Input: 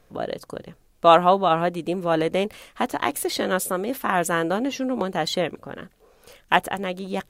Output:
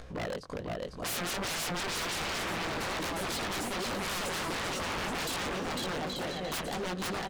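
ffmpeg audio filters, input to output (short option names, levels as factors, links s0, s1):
-filter_complex "[0:a]lowpass=5700,equalizer=f=63:t=o:w=1.4:g=8.5,acompressor=mode=upward:threshold=0.02:ratio=2.5,flanger=delay=16.5:depth=4.6:speed=1,asplit=2[s0][s1];[s1]aecho=0:1:500|825|1036|1174|1263:0.631|0.398|0.251|0.158|0.1[s2];[s0][s2]amix=inputs=2:normalize=0,aeval=exprs='0.0335*(abs(mod(val(0)/0.0335+3,4)-2)-1)':c=same,asplit=2[s3][s4];[s4]aecho=0:1:888:0.251[s5];[s3][s5]amix=inputs=2:normalize=0"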